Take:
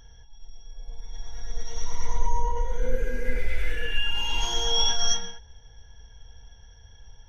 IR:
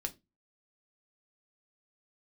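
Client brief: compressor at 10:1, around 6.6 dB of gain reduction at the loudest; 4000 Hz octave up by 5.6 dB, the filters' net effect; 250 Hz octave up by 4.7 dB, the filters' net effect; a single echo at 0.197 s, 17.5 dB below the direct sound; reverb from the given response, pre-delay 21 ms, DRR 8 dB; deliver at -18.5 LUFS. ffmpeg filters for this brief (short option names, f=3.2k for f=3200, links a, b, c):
-filter_complex "[0:a]equalizer=f=250:t=o:g=5.5,equalizer=f=4k:t=o:g=8,acompressor=threshold=-20dB:ratio=10,aecho=1:1:197:0.133,asplit=2[a][b];[1:a]atrim=start_sample=2205,adelay=21[c];[b][c]afir=irnorm=-1:irlink=0,volume=-8dB[d];[a][d]amix=inputs=2:normalize=0,volume=9.5dB"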